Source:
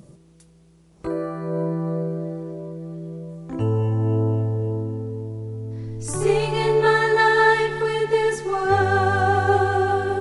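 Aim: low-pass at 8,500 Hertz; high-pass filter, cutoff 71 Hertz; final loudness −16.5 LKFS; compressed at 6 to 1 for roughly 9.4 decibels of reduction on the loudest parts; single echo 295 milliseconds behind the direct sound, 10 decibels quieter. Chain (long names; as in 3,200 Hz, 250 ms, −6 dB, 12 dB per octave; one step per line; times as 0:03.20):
high-pass filter 71 Hz
low-pass filter 8,500 Hz
downward compressor 6 to 1, threshold −23 dBFS
single-tap delay 295 ms −10 dB
level +11.5 dB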